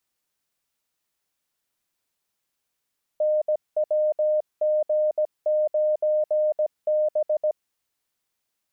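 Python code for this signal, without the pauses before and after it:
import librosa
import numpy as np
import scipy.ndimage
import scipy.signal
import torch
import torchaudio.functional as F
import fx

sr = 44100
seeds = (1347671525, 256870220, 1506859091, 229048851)

y = fx.morse(sr, text='NWG9B', wpm=17, hz=611.0, level_db=-18.5)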